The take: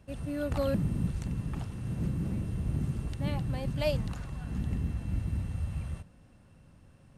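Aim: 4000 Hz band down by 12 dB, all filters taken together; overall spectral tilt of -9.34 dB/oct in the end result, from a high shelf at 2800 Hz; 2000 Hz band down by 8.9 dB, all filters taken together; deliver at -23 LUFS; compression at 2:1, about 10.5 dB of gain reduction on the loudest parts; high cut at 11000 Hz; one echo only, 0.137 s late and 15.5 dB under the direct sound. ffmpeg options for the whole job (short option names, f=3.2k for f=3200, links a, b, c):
-af "lowpass=11k,equalizer=f=2k:t=o:g=-6.5,highshelf=f=2.8k:g=-8.5,equalizer=f=4k:t=o:g=-6.5,acompressor=threshold=-45dB:ratio=2,aecho=1:1:137:0.168,volume=19.5dB"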